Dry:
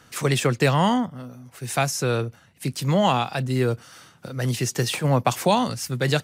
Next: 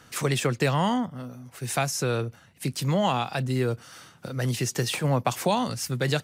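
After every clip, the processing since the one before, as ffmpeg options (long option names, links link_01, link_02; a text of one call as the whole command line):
ffmpeg -i in.wav -af "acompressor=threshold=-27dB:ratio=1.5" out.wav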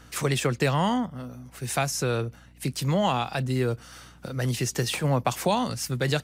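ffmpeg -i in.wav -af "aeval=exprs='val(0)+0.00251*(sin(2*PI*60*n/s)+sin(2*PI*2*60*n/s)/2+sin(2*PI*3*60*n/s)/3+sin(2*PI*4*60*n/s)/4+sin(2*PI*5*60*n/s)/5)':channel_layout=same" out.wav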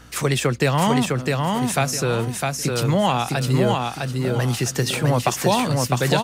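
ffmpeg -i in.wav -af "aecho=1:1:656|1312|1968|2624:0.708|0.205|0.0595|0.0173,volume=4.5dB" out.wav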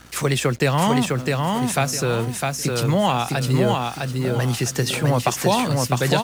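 ffmpeg -i in.wav -af "acrusher=bits=6:mix=0:aa=0.5" out.wav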